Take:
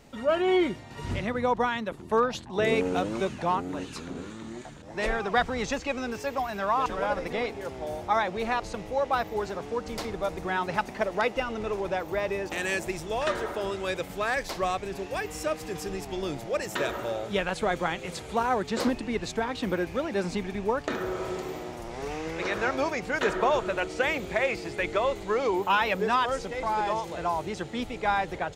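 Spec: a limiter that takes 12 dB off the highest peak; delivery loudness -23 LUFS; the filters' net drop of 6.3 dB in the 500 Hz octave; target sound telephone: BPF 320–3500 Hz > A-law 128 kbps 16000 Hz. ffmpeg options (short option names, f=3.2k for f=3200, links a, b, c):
-af "equalizer=f=500:t=o:g=-7,alimiter=level_in=1.5dB:limit=-24dB:level=0:latency=1,volume=-1.5dB,highpass=320,lowpass=3.5k,volume=14.5dB" -ar 16000 -c:a pcm_alaw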